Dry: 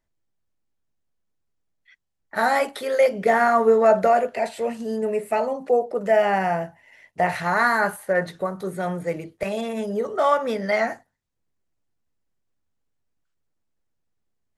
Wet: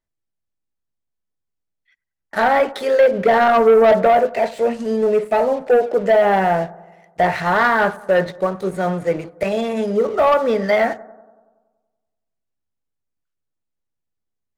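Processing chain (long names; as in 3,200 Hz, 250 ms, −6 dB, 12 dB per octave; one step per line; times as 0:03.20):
treble cut that deepens with the level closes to 2,200 Hz, closed at −15.5 dBFS
dynamic equaliser 420 Hz, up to +4 dB, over −28 dBFS, Q 1
leveller curve on the samples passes 2
bucket-brigade delay 94 ms, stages 1,024, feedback 62%, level −20.5 dB
level −2.5 dB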